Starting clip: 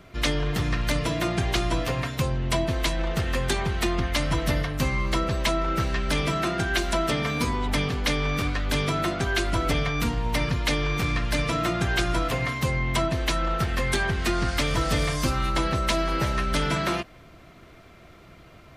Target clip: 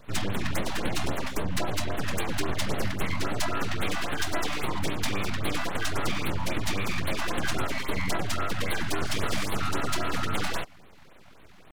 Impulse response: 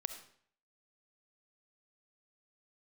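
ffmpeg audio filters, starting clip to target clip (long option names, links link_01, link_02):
-af "aeval=exprs='abs(val(0))':channel_layout=same,atempo=1.6,afftfilt=real='re*(1-between(b*sr/1024,370*pow(6400/370,0.5+0.5*sin(2*PI*3.7*pts/sr))/1.41,370*pow(6400/370,0.5+0.5*sin(2*PI*3.7*pts/sr))*1.41))':imag='im*(1-between(b*sr/1024,370*pow(6400/370,0.5+0.5*sin(2*PI*3.7*pts/sr))/1.41,370*pow(6400/370,0.5+0.5*sin(2*PI*3.7*pts/sr))*1.41))':win_size=1024:overlap=0.75"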